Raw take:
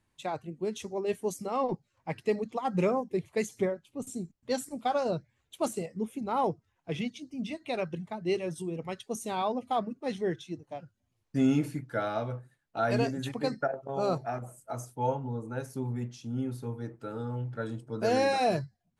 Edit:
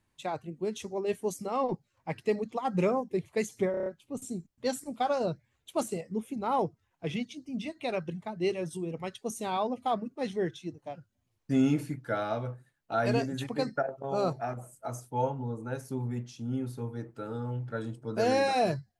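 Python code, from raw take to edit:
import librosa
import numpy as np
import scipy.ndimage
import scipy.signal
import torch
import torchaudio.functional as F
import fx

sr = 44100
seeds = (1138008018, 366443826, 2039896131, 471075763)

y = fx.edit(x, sr, fx.stutter(start_s=3.71, slice_s=0.03, count=6), tone=tone)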